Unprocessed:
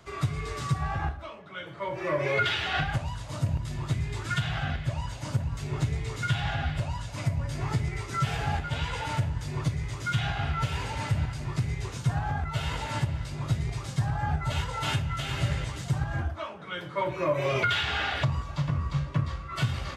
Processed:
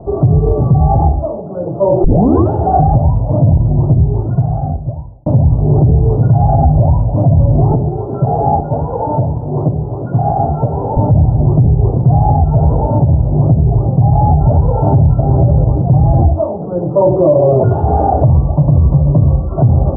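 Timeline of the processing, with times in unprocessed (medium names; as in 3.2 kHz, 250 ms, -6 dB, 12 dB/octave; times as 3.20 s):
2.04 s: tape start 0.47 s
3.40–5.26 s: fade out
7.71–10.97 s: high-pass 350 Hz 6 dB/octave
12.72–14.18 s: compression 2:1, threshold -30 dBFS
16.29–16.94 s: distance through air 340 m
18.29–19.06 s: steep low-pass 1.6 kHz
whole clip: elliptic low-pass 770 Hz, stop band 60 dB; de-hum 46.87 Hz, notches 8; loudness maximiser +26.5 dB; trim -1 dB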